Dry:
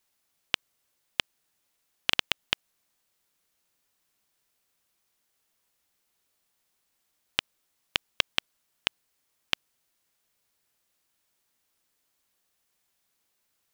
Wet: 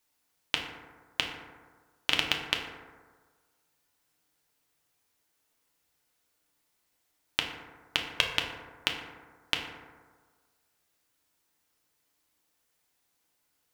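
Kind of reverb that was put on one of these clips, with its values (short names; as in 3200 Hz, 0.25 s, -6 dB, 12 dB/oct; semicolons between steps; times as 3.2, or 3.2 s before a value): FDN reverb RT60 1.5 s, low-frequency decay 0.95×, high-frequency decay 0.35×, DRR 0.5 dB; gain -1.5 dB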